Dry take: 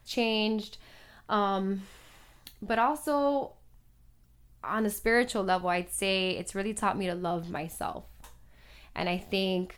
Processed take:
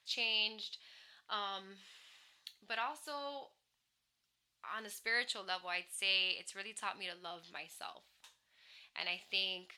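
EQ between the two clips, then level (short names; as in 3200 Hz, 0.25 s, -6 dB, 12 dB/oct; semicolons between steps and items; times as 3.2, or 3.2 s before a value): band-pass 3700 Hz, Q 1.3; 0.0 dB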